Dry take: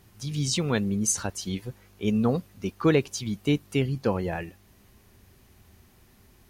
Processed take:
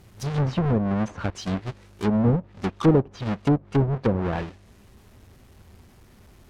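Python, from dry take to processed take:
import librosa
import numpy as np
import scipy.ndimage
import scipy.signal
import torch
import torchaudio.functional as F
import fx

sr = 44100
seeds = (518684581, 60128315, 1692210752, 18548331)

y = fx.halfwave_hold(x, sr)
y = fx.env_lowpass_down(y, sr, base_hz=670.0, full_db=-17.5)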